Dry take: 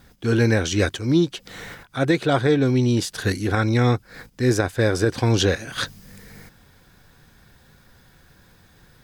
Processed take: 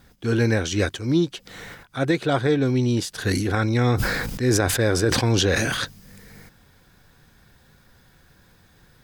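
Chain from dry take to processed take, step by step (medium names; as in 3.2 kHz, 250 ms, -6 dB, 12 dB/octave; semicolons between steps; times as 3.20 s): 3.11–5.85 s: decay stretcher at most 28 dB/s; trim -2 dB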